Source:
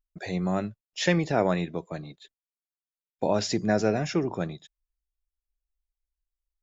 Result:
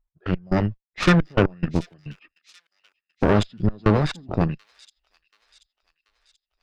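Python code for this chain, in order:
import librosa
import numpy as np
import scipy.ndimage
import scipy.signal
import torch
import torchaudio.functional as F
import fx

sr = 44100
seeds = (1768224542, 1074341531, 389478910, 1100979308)

p1 = fx.dynamic_eq(x, sr, hz=5200.0, q=0.89, threshold_db=-43.0, ratio=4.0, max_db=-3)
p2 = fx.env_lowpass(p1, sr, base_hz=1900.0, full_db=-22.5)
p3 = fx.low_shelf(p2, sr, hz=160.0, db=5.0)
p4 = np.clip(p3, -10.0 ** (-24.5 / 20.0), 10.0 ** (-24.5 / 20.0))
p5 = p3 + (p4 * librosa.db_to_amplitude(-11.0))
p6 = fx.step_gate(p5, sr, bpm=175, pattern='x..x..xxx..xx', floor_db=-24.0, edge_ms=4.5)
p7 = fx.cheby_harmonics(p6, sr, harmonics=(8,), levels_db=(-13,), full_scale_db=-7.5)
p8 = fx.formant_shift(p7, sr, semitones=-6)
p9 = p8 + fx.echo_wet_highpass(p8, sr, ms=733, feedback_pct=53, hz=4800.0, wet_db=-11.0, dry=0)
y = p9 * librosa.db_to_amplitude(3.5)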